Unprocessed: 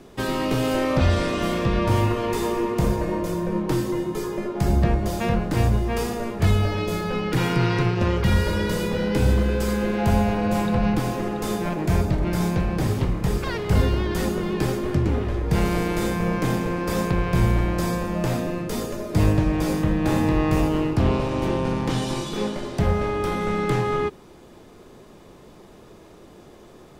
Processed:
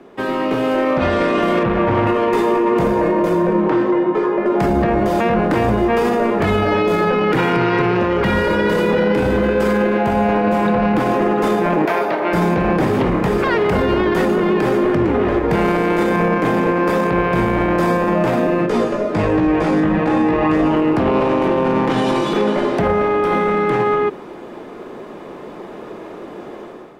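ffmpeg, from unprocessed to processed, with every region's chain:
ffmpeg -i in.wav -filter_complex "[0:a]asettb=1/sr,asplit=3[link_01][link_02][link_03];[link_01]atrim=end=1.634[link_04];[link_02]atrim=start=1.63:end=2.07,asetpts=PTS-STARTPTS,afade=type=in:duration=0.004:curve=qsin,afade=type=out:start_time=0.436:duration=0.004:curve=qsin,lowpass=3100,volume=19dB,asoftclip=hard,volume=-19dB,equalizer=frequency=81:width=0.59:gain=6[link_05];[link_03]atrim=start=2.066[link_06];[link_04][link_05]acrossfade=duration=0.004:curve1=hsin:curve2=qsin[link_07];[link_07][link_06]acrossfade=duration=0.004:curve1=qsin:curve2=hsin,asettb=1/sr,asplit=3[link_08][link_09][link_10];[link_08]atrim=end=3.684[link_11];[link_09]atrim=start=3.68:end=4.46,asetpts=PTS-STARTPTS,afade=type=in:duration=0.004:curve=qsin,afade=type=out:start_time=0.776:duration=0.004:curve=qsin,lowshelf=frequency=260:gain=-11,adynamicsmooth=sensitivity=1.5:basefreq=2200[link_12];[link_10]atrim=start=4.456[link_13];[link_11][link_12]acrossfade=duration=0.004:curve1=hsin:curve2=qsin[link_14];[link_14][link_13]acrossfade=duration=0.004:curve1=qsin:curve2=hsin,asettb=1/sr,asplit=3[link_15][link_16][link_17];[link_15]atrim=end=11.854[link_18];[link_16]atrim=start=11.85:end=12.33,asetpts=PTS-STARTPTS,afade=type=in:duration=0.004:curve=qsin,afade=type=out:start_time=0.476:duration=0.004:curve=qsin,highpass=540,equalizer=frequency=7700:width_type=o:width=0.67:gain=-8.5[link_19];[link_17]atrim=start=12.326[link_20];[link_18][link_19]acrossfade=duration=0.004:curve1=hsin:curve2=qsin[link_21];[link_21][link_20]acrossfade=duration=0.004:curve1=qsin:curve2=hsin,asettb=1/sr,asplit=3[link_22][link_23][link_24];[link_22]atrim=end=18.664[link_25];[link_23]atrim=start=18.66:end=20.76,asetpts=PTS-STARTPTS,afade=type=in:duration=0.004:curve=qsin,afade=type=out:start_time=2.096:duration=0.004:curve=qsin,lowpass=8200,flanger=delay=16.5:depth=2.3:speed=1.3[link_26];[link_24]atrim=start=20.756[link_27];[link_25][link_26]acrossfade=duration=0.004:curve1=hsin:curve2=qsin[link_28];[link_28][link_27]acrossfade=duration=0.004:curve1=qsin:curve2=hsin,acrossover=split=200 2700:gain=0.126 1 0.158[link_29][link_30][link_31];[link_29][link_30][link_31]amix=inputs=3:normalize=0,dynaudnorm=framelen=760:gausssize=3:maxgain=11dB,alimiter=limit=-14dB:level=0:latency=1:release=25,volume=5.5dB" out.wav

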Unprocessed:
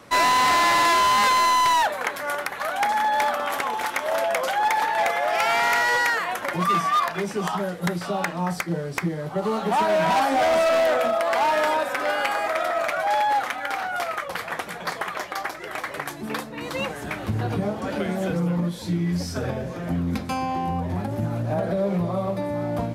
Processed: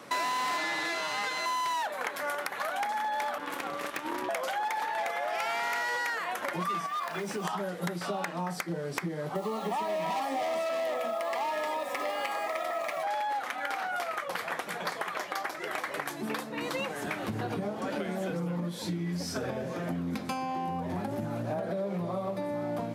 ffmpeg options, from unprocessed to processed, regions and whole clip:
ffmpeg -i in.wav -filter_complex "[0:a]asettb=1/sr,asplit=3[link_01][link_02][link_03];[link_01]atrim=end=0.574[link_04];[link_02]atrim=start=0.57:end=1.46,asetpts=PTS-STARTPTS,afade=type=in:duration=0.004:curve=qsin,afade=type=out:start_time=0.886:duration=0.004:curve=qsin,highshelf=frequency=9500:gain=-11,aecho=1:1:6.4:0.76,atrim=end_sample=39249[link_05];[link_03]atrim=start=1.456[link_06];[link_04][link_05]acrossfade=duration=0.004:curve1=hsin:curve2=qsin[link_07];[link_07][link_06]acrossfade=duration=0.004:curve1=qsin:curve2=hsin,asettb=1/sr,asplit=3[link_08][link_09][link_10];[link_08]atrim=end=3.384[link_11];[link_09]atrim=start=3.38:end=4.29,asetpts=PTS-STARTPTS,afade=type=in:duration=0.004:curve=qsin,afade=type=out:start_time=0.906:duration=0.004:curve=qsin,aeval=exprs='(tanh(10*val(0)+0.75)-tanh(0.75))/10':channel_layout=same,aeval=exprs='val(0)*sin(2*PI*300*n/s)':channel_layout=same[link_12];[link_10]atrim=start=4.286[link_13];[link_11][link_12]acrossfade=duration=0.004:curve1=hsin:curve2=qsin[link_14];[link_14][link_13]acrossfade=duration=0.004:curve1=qsin:curve2=hsin,asettb=1/sr,asplit=3[link_15][link_16][link_17];[link_15]atrim=end=6.864[link_18];[link_16]atrim=start=6.86:end=7.45,asetpts=PTS-STARTPTS,afade=type=in:duration=0.004:curve=qsin,afade=type=out:start_time=0.586:duration=0.004:curve=qsin,acompressor=threshold=-29dB:ratio=3:attack=3.2:release=140:knee=1:detection=peak,acrusher=bits=7:mix=0:aa=0.5[link_19];[link_17]atrim=start=7.446[link_20];[link_18][link_19]acrossfade=duration=0.004:curve1=hsin:curve2=qsin[link_21];[link_21][link_20]acrossfade=duration=0.004:curve1=qsin:curve2=hsin,asettb=1/sr,asplit=3[link_22][link_23][link_24];[link_22]atrim=end=9.354[link_25];[link_23]atrim=start=9.35:end=13.03,asetpts=PTS-STARTPTS,afade=type=in:duration=0.004:curve=qsin,afade=type=out:start_time=3.676:duration=0.004:curve=qsin,acrusher=bits=8:dc=4:mix=0:aa=0.000001,asuperstop=centerf=1500:order=12:qfactor=5.8[link_26];[link_24]atrim=start=13.026[link_27];[link_25][link_26]acrossfade=duration=0.004:curve1=hsin:curve2=qsin[link_28];[link_28][link_27]acrossfade=duration=0.004:curve1=qsin:curve2=hsin,highpass=170,acompressor=threshold=-30dB:ratio=6" out.wav

